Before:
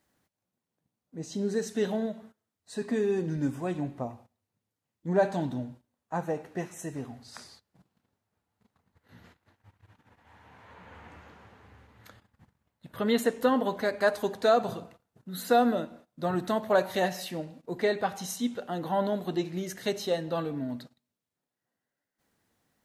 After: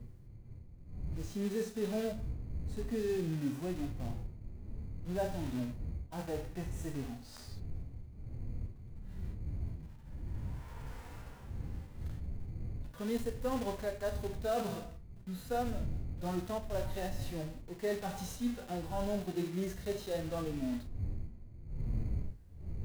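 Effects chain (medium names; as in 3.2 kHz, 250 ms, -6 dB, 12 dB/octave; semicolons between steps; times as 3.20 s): block-companded coder 3-bit; wind noise 93 Hz -30 dBFS; in parallel at -11.5 dB: sample-rate reducer 2.2 kHz, jitter 0%; on the sum: flange 0.23 Hz, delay 8 ms, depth 8.3 ms, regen -62%; reverse; compression 4:1, threshold -36 dBFS, peak gain reduction 20 dB; reverse; harmonic-percussive split percussive -13 dB; trim +4 dB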